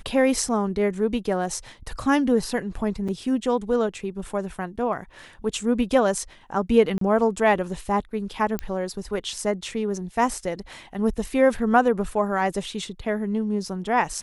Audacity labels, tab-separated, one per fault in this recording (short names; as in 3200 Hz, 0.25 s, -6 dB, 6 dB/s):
3.080000	3.090000	gap 5.6 ms
6.980000	7.010000	gap 33 ms
8.590000	8.590000	pop -13 dBFS